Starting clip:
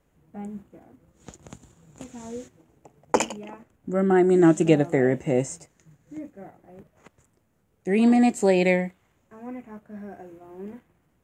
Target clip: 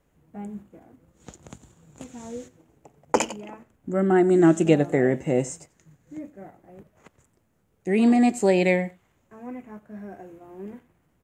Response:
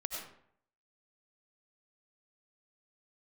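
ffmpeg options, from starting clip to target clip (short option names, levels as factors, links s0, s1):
-af "aecho=1:1:90:0.0794"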